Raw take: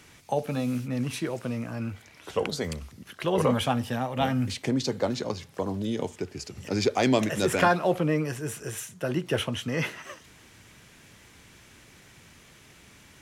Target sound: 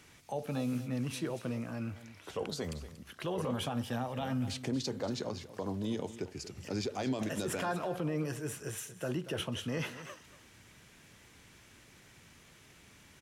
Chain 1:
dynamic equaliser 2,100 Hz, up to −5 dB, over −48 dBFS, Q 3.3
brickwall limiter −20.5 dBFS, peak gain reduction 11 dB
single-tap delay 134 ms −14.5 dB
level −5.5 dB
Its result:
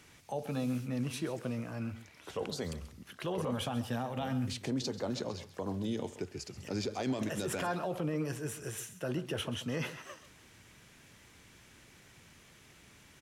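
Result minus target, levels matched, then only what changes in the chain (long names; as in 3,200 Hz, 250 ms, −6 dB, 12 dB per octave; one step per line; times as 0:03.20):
echo 100 ms early
change: single-tap delay 234 ms −14.5 dB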